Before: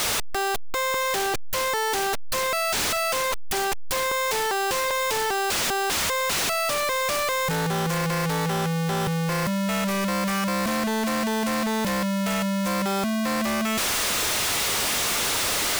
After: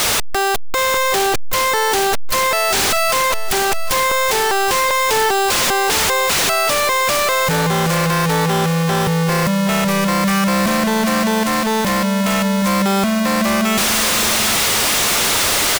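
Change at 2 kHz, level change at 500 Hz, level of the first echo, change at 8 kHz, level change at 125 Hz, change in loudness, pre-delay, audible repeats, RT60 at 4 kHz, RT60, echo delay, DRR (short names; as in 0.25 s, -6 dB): +8.5 dB, +8.0 dB, -11.0 dB, +8.5 dB, +8.5 dB, +8.5 dB, none, 3, none, none, 0.775 s, none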